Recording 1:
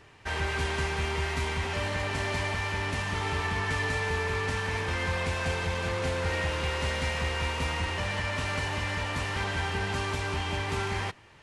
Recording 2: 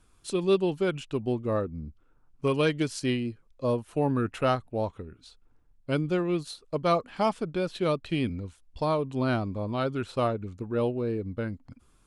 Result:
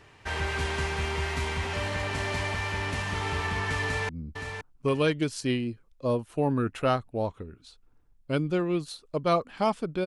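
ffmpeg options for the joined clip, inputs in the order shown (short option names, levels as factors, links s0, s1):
-filter_complex "[0:a]apad=whole_dur=10.06,atrim=end=10.06,atrim=end=4.092[s0];[1:a]atrim=start=1.678:end=7.65[s1];[s0][s1]acrossfade=d=0.004:c1=hsin:c2=hsin,asplit=2[s2][s3];[s3]afade=t=in:st=3.83:d=0.01,afade=t=out:st=4.09:d=0.01,aecho=0:1:520|1040|1560:0.446684|0.0893367|0.0178673[s4];[s2][s4]amix=inputs=2:normalize=0"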